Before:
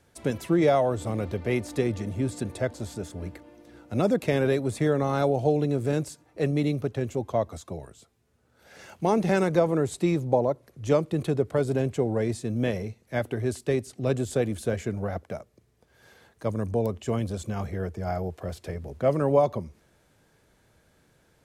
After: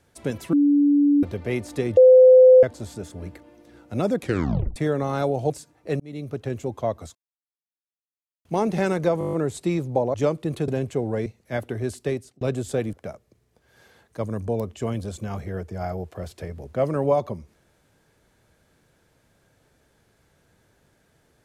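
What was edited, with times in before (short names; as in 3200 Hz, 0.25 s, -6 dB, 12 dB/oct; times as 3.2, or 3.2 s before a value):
0.53–1.23 bleep 288 Hz -14 dBFS
1.97–2.63 bleep 512 Hz -7.5 dBFS
4.19 tape stop 0.57 s
5.5–6.01 cut
6.51–6.95 fade in
7.66–8.96 mute
9.7 stutter 0.02 s, 8 plays
10.51–10.82 cut
11.36–11.71 cut
12.29–12.88 cut
13.62–14.03 fade out equal-power
14.55–15.19 cut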